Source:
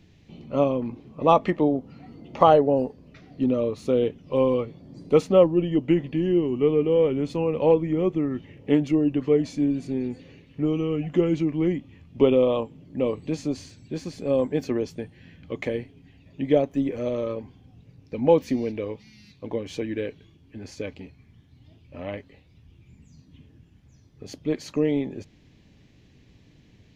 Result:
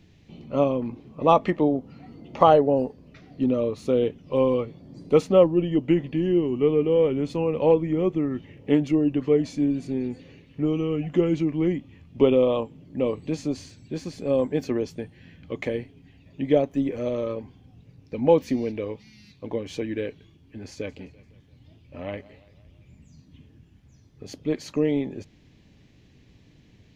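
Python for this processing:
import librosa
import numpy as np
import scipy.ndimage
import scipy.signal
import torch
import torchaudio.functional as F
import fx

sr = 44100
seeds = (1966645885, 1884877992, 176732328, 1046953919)

y = fx.echo_warbled(x, sr, ms=170, feedback_pct=54, rate_hz=2.8, cents=74, wet_db=-20.5, at=(20.72, 24.44))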